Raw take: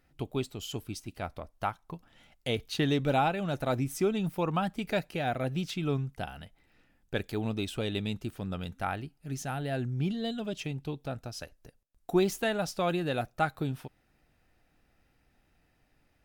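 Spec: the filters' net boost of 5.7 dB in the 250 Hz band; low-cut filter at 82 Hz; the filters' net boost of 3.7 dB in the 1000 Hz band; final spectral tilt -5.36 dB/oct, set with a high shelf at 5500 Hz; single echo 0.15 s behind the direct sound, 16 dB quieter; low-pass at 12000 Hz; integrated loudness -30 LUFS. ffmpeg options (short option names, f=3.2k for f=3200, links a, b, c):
-af "highpass=82,lowpass=12k,equalizer=f=250:t=o:g=7.5,equalizer=f=1k:t=o:g=4.5,highshelf=f=5.5k:g=6,aecho=1:1:150:0.158,volume=-1dB"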